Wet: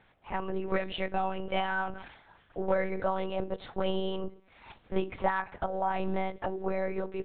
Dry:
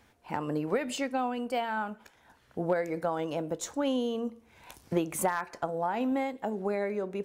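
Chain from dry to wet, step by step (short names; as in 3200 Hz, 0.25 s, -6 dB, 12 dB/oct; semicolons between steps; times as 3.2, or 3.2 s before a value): low shelf 190 Hz -9.5 dB; monotone LPC vocoder at 8 kHz 190 Hz; 1.43–3.44 sustainer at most 71 dB/s; gain +1.5 dB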